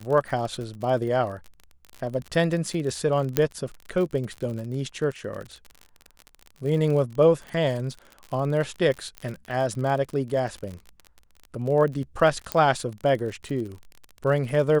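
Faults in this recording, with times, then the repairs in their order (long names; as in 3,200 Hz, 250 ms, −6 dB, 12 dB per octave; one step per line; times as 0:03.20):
surface crackle 40 per second −31 dBFS
0:03.37: click −6 dBFS
0:09.18: click −19 dBFS
0:12.52: click −9 dBFS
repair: click removal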